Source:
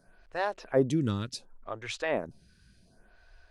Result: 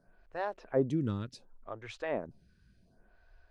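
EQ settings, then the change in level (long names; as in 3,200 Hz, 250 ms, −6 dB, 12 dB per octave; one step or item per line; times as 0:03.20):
high-shelf EQ 2,200 Hz −9.5 dB
high-shelf EQ 9,100 Hz −6 dB
−3.5 dB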